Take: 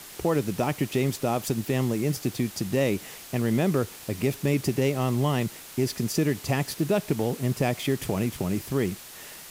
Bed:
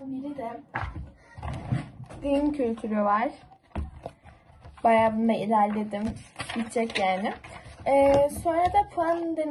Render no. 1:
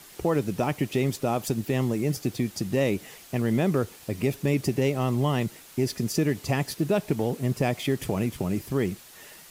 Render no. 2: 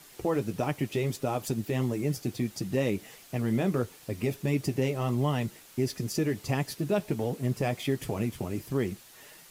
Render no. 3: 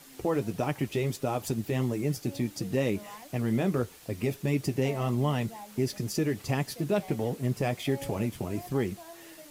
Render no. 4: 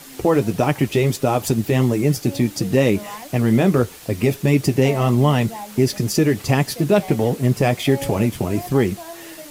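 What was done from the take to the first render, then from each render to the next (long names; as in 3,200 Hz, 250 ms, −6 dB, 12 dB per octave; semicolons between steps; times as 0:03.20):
broadband denoise 6 dB, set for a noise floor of −44 dBFS
flanger 1.5 Hz, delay 6.2 ms, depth 3.8 ms, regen −43%
mix in bed −23 dB
level +11.5 dB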